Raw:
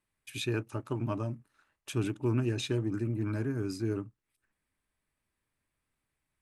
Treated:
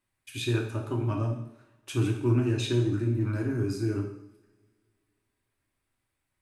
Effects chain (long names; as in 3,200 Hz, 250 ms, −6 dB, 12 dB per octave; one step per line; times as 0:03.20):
coupled-rooms reverb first 0.69 s, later 2.3 s, from −24 dB, DRR 0 dB